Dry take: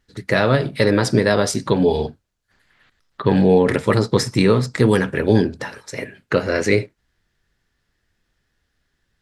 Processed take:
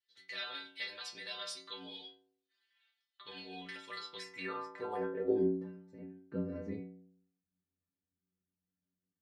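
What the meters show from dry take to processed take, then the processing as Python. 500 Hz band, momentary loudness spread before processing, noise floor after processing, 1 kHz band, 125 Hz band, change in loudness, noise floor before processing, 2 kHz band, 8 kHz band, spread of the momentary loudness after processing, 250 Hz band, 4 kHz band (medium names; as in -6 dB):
-22.0 dB, 14 LU, under -85 dBFS, -21.0 dB, -29.0 dB, -22.0 dB, -72 dBFS, -21.5 dB, under -20 dB, 17 LU, -22.5 dB, -14.5 dB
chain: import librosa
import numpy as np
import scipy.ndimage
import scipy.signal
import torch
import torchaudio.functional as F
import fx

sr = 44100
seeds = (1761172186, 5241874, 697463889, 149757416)

y = fx.stiff_resonator(x, sr, f0_hz=89.0, decay_s=0.85, stiffness=0.008)
y = fx.filter_sweep_bandpass(y, sr, from_hz=3400.0, to_hz=220.0, start_s=4.02, end_s=5.66, q=2.4)
y = F.gain(torch.from_numpy(y), 4.0).numpy()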